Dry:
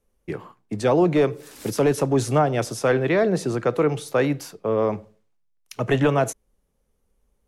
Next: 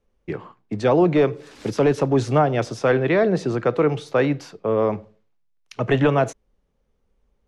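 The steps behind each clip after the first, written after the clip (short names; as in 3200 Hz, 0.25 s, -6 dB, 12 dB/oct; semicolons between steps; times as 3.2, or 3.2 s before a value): LPF 4600 Hz 12 dB/oct; gain +1.5 dB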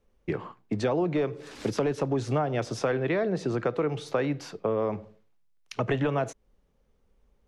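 compressor 4:1, threshold -26 dBFS, peak gain reduction 11.5 dB; gain +1 dB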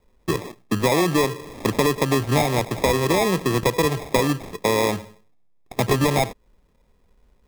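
sample-and-hold 30×; gain +7 dB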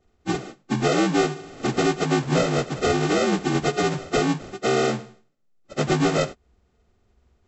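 inharmonic rescaling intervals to 77%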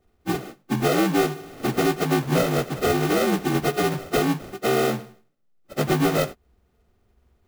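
clock jitter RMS 0.028 ms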